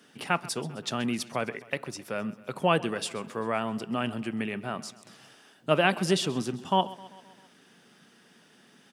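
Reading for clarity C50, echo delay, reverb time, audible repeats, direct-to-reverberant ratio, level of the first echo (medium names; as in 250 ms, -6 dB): no reverb, 131 ms, no reverb, 4, no reverb, -19.0 dB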